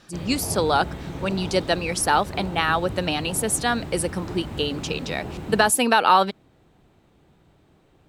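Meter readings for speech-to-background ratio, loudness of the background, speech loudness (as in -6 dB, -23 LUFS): 11.5 dB, -34.5 LUFS, -23.0 LUFS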